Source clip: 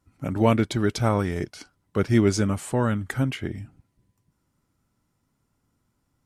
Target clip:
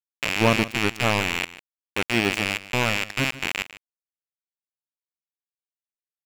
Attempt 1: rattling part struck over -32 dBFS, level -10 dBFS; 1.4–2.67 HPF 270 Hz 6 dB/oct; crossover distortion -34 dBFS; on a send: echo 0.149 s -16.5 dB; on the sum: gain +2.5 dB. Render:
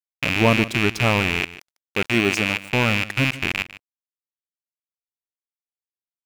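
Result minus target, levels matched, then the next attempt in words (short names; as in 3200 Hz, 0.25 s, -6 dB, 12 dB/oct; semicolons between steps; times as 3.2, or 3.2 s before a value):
crossover distortion: distortion -10 dB
rattling part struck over -32 dBFS, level -10 dBFS; 1.4–2.67 HPF 270 Hz 6 dB/oct; crossover distortion -23 dBFS; on a send: echo 0.149 s -16.5 dB; on the sum: gain +2.5 dB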